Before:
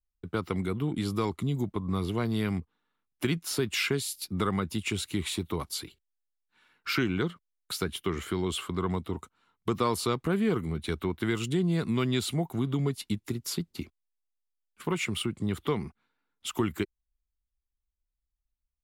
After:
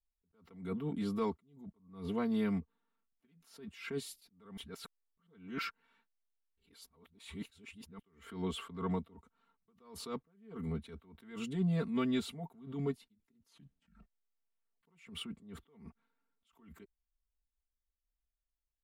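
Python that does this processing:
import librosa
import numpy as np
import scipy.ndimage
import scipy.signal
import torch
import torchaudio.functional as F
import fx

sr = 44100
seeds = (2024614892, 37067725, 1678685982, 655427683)

y = fx.edit(x, sr, fx.reverse_span(start_s=4.57, length_s=3.42),
    fx.tape_stop(start_s=13.38, length_s=1.45), tone=tone)
y = fx.high_shelf(y, sr, hz=2900.0, db=-11.0)
y = y + 0.91 * np.pad(y, (int(4.4 * sr / 1000.0), 0))[:len(y)]
y = fx.attack_slew(y, sr, db_per_s=110.0)
y = y * 10.0 ** (-6.5 / 20.0)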